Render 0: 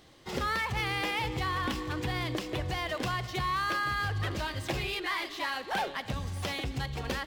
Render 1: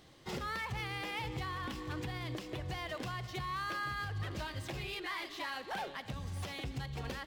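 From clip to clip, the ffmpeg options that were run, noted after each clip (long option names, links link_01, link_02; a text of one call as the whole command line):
ffmpeg -i in.wav -af "equalizer=frequency=140:width=1.6:gain=3.5,alimiter=level_in=2.5dB:limit=-24dB:level=0:latency=1:release=400,volume=-2.5dB,volume=-3dB" out.wav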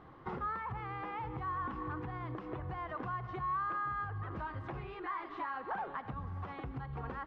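ffmpeg -i in.wav -af "equalizer=frequency=590:width=5.8:gain=-6.5,acompressor=threshold=-43dB:ratio=6,lowpass=frequency=1200:width_type=q:width=2.4,volume=4.5dB" out.wav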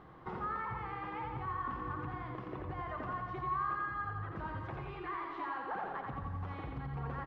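ffmpeg -i in.wav -af "areverse,acompressor=mode=upward:threshold=-45dB:ratio=2.5,areverse,flanger=delay=5:depth=3.2:regen=-85:speed=1.2:shape=triangular,aecho=1:1:86|172|258|344|430|516|602|688:0.668|0.381|0.217|0.124|0.0706|0.0402|0.0229|0.0131,volume=2.5dB" out.wav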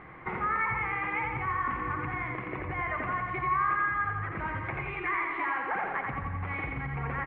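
ffmpeg -i in.wav -af "lowpass=frequency=2200:width_type=q:width=7.5,volume=5dB" out.wav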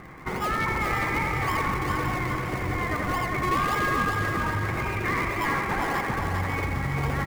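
ffmpeg -i in.wav -filter_complex "[0:a]asplit=2[link_01][link_02];[link_02]acrusher=samples=41:mix=1:aa=0.000001:lfo=1:lforange=41:lforate=1.8,volume=-4dB[link_03];[link_01][link_03]amix=inputs=2:normalize=0,asoftclip=type=hard:threshold=-23dB,aecho=1:1:402|804|1206|1608|2010|2412:0.631|0.303|0.145|0.0698|0.0335|0.0161,volume=2dB" out.wav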